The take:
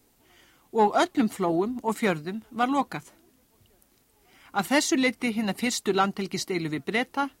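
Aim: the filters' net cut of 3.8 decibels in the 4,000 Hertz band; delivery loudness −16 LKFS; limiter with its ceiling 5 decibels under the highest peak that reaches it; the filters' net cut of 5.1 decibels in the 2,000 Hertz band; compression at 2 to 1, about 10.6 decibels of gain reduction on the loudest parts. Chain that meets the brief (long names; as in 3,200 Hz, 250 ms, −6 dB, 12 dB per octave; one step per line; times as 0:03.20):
parametric band 2,000 Hz −5.5 dB
parametric band 4,000 Hz −3 dB
downward compressor 2 to 1, threshold −38 dBFS
level +21.5 dB
brickwall limiter −5 dBFS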